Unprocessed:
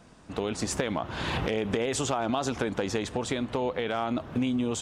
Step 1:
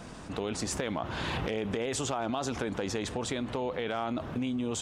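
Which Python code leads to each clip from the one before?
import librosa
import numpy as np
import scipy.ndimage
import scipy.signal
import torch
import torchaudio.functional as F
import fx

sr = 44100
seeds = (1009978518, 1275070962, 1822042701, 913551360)

y = fx.env_flatten(x, sr, amount_pct=50)
y = y * librosa.db_to_amplitude(-5.5)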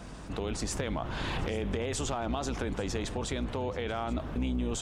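y = fx.octave_divider(x, sr, octaves=2, level_db=1.0)
y = fx.dmg_crackle(y, sr, seeds[0], per_s=36.0, level_db=-51.0)
y = y + 10.0 ** (-19.0 / 20.0) * np.pad(y, (int(832 * sr / 1000.0), 0))[:len(y)]
y = y * librosa.db_to_amplitude(-1.5)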